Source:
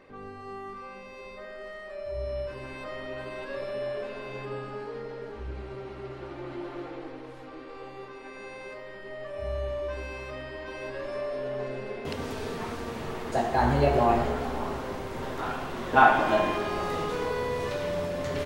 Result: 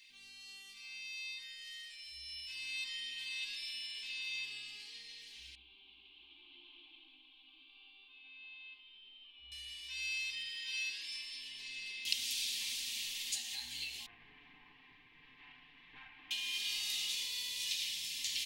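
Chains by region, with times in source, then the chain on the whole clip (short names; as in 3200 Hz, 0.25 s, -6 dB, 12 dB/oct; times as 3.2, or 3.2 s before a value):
5.55–9.52 steep low-pass 3300 Hz 48 dB/oct + fixed phaser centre 510 Hz, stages 6
10.51–11.08 HPF 140 Hz 24 dB/oct + flutter echo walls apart 9 m, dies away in 0.32 s
14.06–16.31 minimum comb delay 6.8 ms + LPF 1600 Hz 24 dB/oct
whole clip: comb 3.8 ms, depth 35%; compressor 6:1, threshold -28 dBFS; inverse Chebyshev high-pass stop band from 1500 Hz, stop band 40 dB; gain +11 dB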